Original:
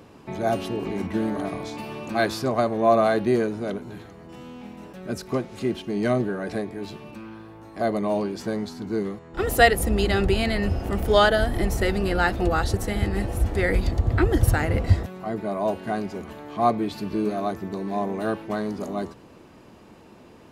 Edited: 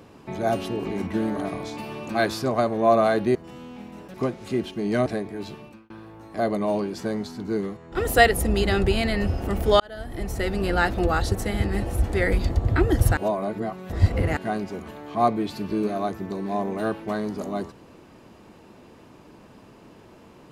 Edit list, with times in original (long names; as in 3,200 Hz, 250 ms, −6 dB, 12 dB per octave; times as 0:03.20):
0:03.35–0:04.20: remove
0:04.99–0:05.25: remove
0:06.17–0:06.48: remove
0:06.98–0:07.32: fade out
0:11.22–0:12.14: fade in
0:14.59–0:15.79: reverse